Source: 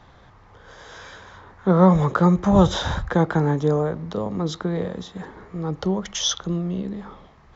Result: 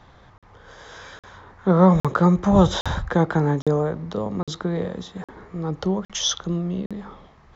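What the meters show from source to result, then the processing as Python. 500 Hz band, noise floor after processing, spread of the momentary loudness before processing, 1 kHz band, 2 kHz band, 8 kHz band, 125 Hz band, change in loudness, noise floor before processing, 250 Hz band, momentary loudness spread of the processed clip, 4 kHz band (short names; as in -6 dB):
0.0 dB, -53 dBFS, 19 LU, 0.0 dB, 0.0 dB, n/a, 0.0 dB, 0.0 dB, -51 dBFS, 0.0 dB, 19 LU, 0.0 dB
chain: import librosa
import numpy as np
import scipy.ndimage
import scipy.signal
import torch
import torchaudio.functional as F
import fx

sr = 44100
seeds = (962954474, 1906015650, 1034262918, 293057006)

y = fx.buffer_crackle(x, sr, first_s=0.38, period_s=0.81, block=2048, kind='zero')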